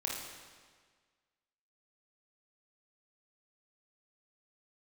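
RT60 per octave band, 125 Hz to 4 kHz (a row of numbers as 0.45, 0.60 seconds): 1.6, 1.6, 1.6, 1.6, 1.6, 1.5 seconds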